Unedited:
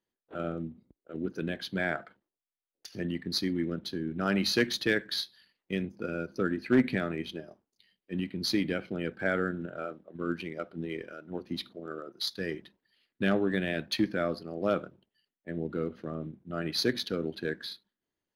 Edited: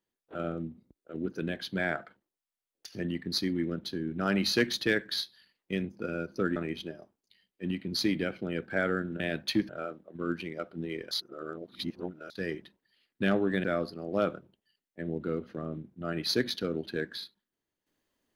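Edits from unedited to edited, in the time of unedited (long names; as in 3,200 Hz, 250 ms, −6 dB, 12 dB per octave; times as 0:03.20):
0:06.56–0:07.05: remove
0:11.11–0:12.30: reverse
0:13.64–0:14.13: move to 0:09.69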